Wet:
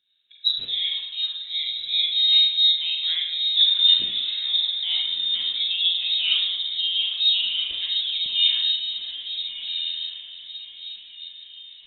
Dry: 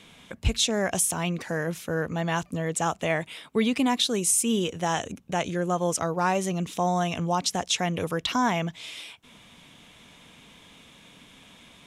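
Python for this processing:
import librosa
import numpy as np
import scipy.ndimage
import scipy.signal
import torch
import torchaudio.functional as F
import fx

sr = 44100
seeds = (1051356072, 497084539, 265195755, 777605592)

y = scipy.ndimage.median_filter(x, 15, mode='constant')
y = fx.doubler(y, sr, ms=43.0, db=-8)
y = fx.echo_diffused(y, sr, ms=1309, feedback_pct=51, wet_db=-4)
y = fx.rev_spring(y, sr, rt60_s=1.0, pass_ms=(36, 49), chirp_ms=40, drr_db=-1.0)
y = fx.freq_invert(y, sr, carrier_hz=3900)
y = fx.spectral_expand(y, sr, expansion=1.5)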